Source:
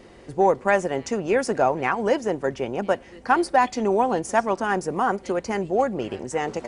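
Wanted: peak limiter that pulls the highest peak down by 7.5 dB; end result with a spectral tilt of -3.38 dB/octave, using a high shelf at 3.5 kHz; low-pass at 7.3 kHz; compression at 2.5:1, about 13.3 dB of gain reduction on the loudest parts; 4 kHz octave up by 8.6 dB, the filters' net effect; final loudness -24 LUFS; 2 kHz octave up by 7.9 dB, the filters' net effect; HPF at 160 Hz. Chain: high-pass 160 Hz; low-pass 7.3 kHz; peaking EQ 2 kHz +7.5 dB; treble shelf 3.5 kHz +7 dB; peaking EQ 4 kHz +4.5 dB; compression 2.5:1, threshold -31 dBFS; trim +9 dB; peak limiter -11.5 dBFS

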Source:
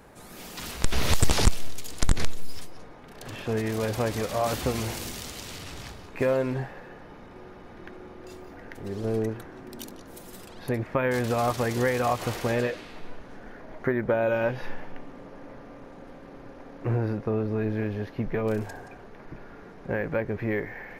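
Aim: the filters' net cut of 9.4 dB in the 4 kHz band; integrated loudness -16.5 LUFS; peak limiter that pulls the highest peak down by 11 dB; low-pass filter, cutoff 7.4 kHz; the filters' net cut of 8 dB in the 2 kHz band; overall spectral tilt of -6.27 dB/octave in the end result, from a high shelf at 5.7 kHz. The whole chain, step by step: low-pass 7.4 kHz; peaking EQ 2 kHz -8.5 dB; peaking EQ 4 kHz -6 dB; treble shelf 5.7 kHz -7.5 dB; trim +16 dB; peak limiter -5.5 dBFS

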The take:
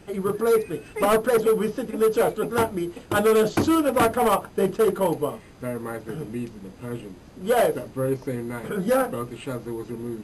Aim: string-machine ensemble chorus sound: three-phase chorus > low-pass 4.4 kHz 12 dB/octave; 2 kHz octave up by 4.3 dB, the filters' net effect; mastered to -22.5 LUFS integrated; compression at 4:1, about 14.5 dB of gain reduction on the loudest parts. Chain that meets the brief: peaking EQ 2 kHz +6 dB; compression 4:1, threshold -34 dBFS; three-phase chorus; low-pass 4.4 kHz 12 dB/octave; trim +17 dB

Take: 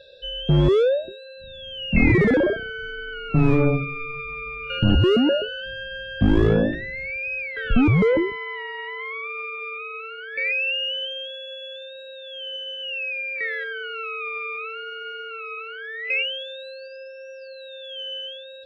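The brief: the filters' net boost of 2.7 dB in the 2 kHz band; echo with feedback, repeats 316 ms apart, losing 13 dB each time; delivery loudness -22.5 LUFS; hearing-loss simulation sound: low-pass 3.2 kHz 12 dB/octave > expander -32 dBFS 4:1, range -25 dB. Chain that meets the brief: low-pass 3.2 kHz 12 dB/octave; peaking EQ 2 kHz +4.5 dB; feedback delay 316 ms, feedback 22%, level -13 dB; expander -32 dBFS 4:1, range -25 dB

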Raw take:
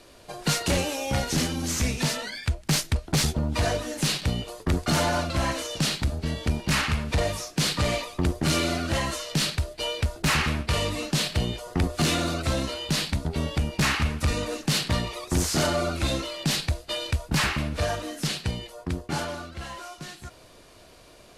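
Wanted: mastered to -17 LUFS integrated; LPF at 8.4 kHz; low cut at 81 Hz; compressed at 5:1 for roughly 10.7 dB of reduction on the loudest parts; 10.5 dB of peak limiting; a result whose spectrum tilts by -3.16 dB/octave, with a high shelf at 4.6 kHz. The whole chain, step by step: high-pass 81 Hz; low-pass 8.4 kHz; treble shelf 4.6 kHz +8 dB; compression 5:1, threshold -31 dBFS; trim +19 dB; peak limiter -8 dBFS

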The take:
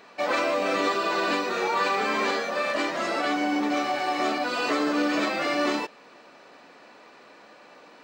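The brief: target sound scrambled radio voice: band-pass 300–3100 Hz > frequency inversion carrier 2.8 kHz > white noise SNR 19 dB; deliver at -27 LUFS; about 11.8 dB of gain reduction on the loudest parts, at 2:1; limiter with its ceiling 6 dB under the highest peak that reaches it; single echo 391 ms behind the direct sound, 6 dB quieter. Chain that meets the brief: compression 2:1, threshold -44 dBFS; peak limiter -31.5 dBFS; band-pass 300–3100 Hz; delay 391 ms -6 dB; frequency inversion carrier 2.8 kHz; white noise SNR 19 dB; trim +12 dB

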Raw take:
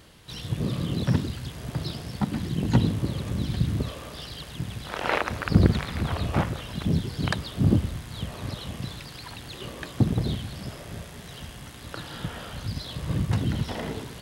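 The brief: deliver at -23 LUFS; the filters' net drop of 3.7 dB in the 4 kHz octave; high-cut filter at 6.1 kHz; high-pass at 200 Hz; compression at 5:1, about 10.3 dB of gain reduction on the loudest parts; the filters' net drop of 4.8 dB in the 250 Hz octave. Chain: high-pass 200 Hz; low-pass 6.1 kHz; peaking EQ 250 Hz -3 dB; peaking EQ 4 kHz -4 dB; compression 5:1, threshold -32 dBFS; trim +16 dB

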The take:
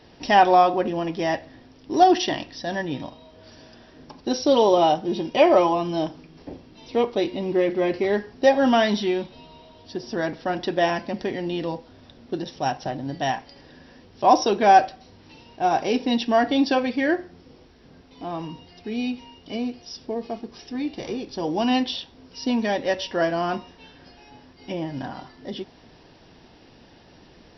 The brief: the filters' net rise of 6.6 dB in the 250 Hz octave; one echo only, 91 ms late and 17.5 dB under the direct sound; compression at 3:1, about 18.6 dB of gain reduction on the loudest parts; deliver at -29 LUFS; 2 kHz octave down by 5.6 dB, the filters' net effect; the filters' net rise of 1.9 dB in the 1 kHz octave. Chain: peaking EQ 250 Hz +8 dB; peaking EQ 1 kHz +3.5 dB; peaking EQ 2 kHz -8.5 dB; compression 3:1, threshold -35 dBFS; delay 91 ms -17.5 dB; trim +6 dB

